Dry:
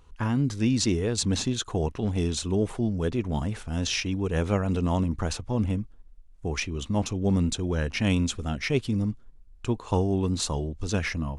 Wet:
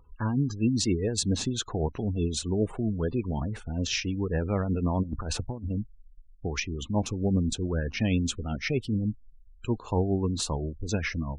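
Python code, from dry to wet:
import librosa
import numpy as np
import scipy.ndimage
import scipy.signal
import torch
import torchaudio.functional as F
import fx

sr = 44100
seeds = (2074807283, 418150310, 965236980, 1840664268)

y = fx.spec_gate(x, sr, threshold_db=-25, keep='strong')
y = fx.over_compress(y, sr, threshold_db=-30.0, ratio=-0.5, at=(5.02, 5.69), fade=0.02)
y = y * (1.0 - 0.36 / 2.0 + 0.36 / 2.0 * np.cos(2.0 * np.pi * 7.6 * (np.arange(len(y)) / sr)))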